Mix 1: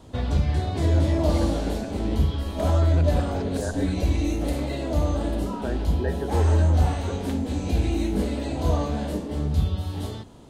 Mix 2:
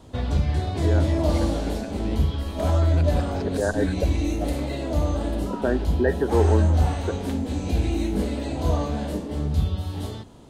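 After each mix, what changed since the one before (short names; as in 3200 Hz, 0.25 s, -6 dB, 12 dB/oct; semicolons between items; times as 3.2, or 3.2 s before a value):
first voice: add tilt +2 dB/oct; second voice +8.0 dB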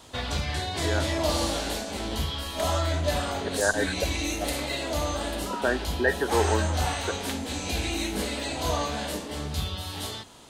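first voice: muted; master: add tilt shelf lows -9.5 dB, about 700 Hz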